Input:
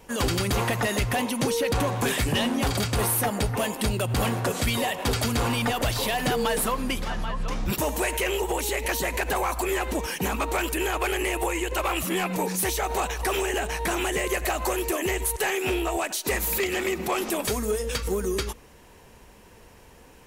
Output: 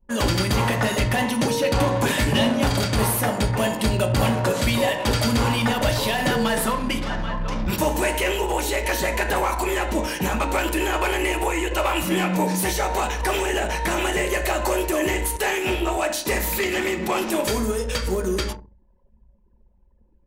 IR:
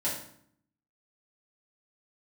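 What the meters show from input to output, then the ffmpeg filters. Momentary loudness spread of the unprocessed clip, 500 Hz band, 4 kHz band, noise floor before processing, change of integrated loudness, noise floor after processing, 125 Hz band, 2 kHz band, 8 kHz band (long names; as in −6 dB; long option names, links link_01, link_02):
3 LU, +4.0 dB, +3.5 dB, −51 dBFS, +3.5 dB, −57 dBFS, +4.5 dB, +4.0 dB, +1.0 dB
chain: -filter_complex "[0:a]asplit=2[link_01][link_02];[1:a]atrim=start_sample=2205,lowpass=7700[link_03];[link_02][link_03]afir=irnorm=-1:irlink=0,volume=-7dB[link_04];[link_01][link_04]amix=inputs=2:normalize=0,anlmdn=3.98"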